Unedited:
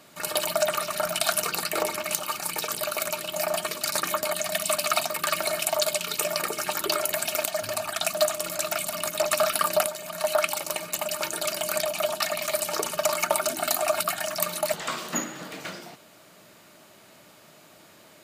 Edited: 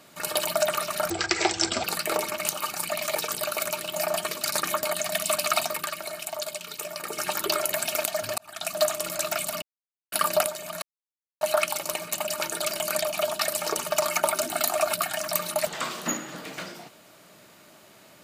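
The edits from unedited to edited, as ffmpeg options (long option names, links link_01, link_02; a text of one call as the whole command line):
ffmpeg -i in.wav -filter_complex "[0:a]asplit=12[link_01][link_02][link_03][link_04][link_05][link_06][link_07][link_08][link_09][link_10][link_11][link_12];[link_01]atrim=end=1.104[link_13];[link_02]atrim=start=1.1:end=1.5,asetpts=PTS-STARTPTS,asetrate=23814,aresample=44100[link_14];[link_03]atrim=start=1.496:end=2.552[link_15];[link_04]atrim=start=12.288:end=12.552[link_16];[link_05]atrim=start=2.548:end=5.32,asetpts=PTS-STARTPTS,afade=type=out:start_time=2.582:duration=0.19:silence=0.398107[link_17];[link_06]atrim=start=5.32:end=6.42,asetpts=PTS-STARTPTS,volume=-8dB[link_18];[link_07]atrim=start=6.42:end=7.78,asetpts=PTS-STARTPTS,afade=type=in:duration=0.19:silence=0.398107,afade=type=out:start_time=1.356:duration=0.004:curve=hsin[link_19];[link_08]atrim=start=7.78:end=9.02,asetpts=PTS-STARTPTS,afade=type=in:duration=0.47,afade=type=out:start_time=1.236:duration=0.004:curve=hsin[link_20];[link_09]atrim=start=9.02:end=9.52,asetpts=PTS-STARTPTS,volume=0[link_21];[link_10]atrim=start=9.52:end=10.22,asetpts=PTS-STARTPTS,afade=type=in:duration=0.004:curve=hsin,afade=type=out:start_time=0.696:duration=0.004:curve=hsin,apad=pad_dur=0.59[link_22];[link_11]atrim=start=10.22:end=12.292,asetpts=PTS-STARTPTS,afade=type=in:duration=0.004:curve=hsin[link_23];[link_12]atrim=start=12.548[link_24];[link_13][link_14]acrossfade=duration=0.004:curve1=hsin:curve2=hsin[link_25];[link_25][link_15]acrossfade=duration=0.004:curve1=hsin:curve2=hsin[link_26];[link_26][link_16]acrossfade=duration=0.004:curve1=hsin:curve2=hsin[link_27];[link_17][link_18][link_19][link_20][link_21][link_22][link_23]concat=n=7:v=0:a=1[link_28];[link_27][link_28]acrossfade=duration=0.004:curve1=hsin:curve2=hsin[link_29];[link_29][link_24]acrossfade=duration=0.004:curve1=hsin:curve2=hsin" out.wav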